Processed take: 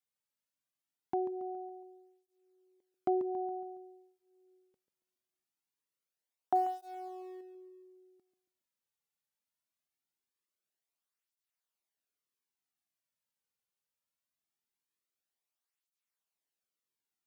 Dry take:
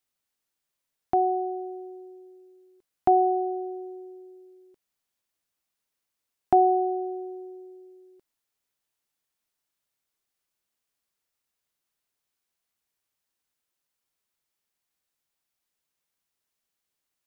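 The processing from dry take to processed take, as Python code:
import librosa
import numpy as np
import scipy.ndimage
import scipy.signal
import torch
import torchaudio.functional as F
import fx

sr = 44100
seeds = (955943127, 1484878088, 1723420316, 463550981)

y = fx.law_mismatch(x, sr, coded='mu', at=(6.55, 7.41))
y = fx.echo_feedback(y, sr, ms=139, feedback_pct=46, wet_db=-11.0)
y = fx.flanger_cancel(y, sr, hz=0.22, depth_ms=3.2)
y = y * 10.0 ** (-7.0 / 20.0)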